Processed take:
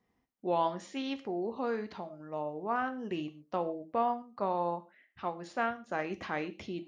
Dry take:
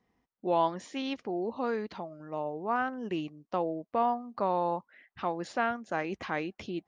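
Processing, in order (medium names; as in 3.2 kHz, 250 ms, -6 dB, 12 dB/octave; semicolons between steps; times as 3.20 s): gated-style reverb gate 160 ms falling, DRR 9.5 dB; 4.22–5.90 s: upward expansion 1.5:1, over -34 dBFS; trim -2.5 dB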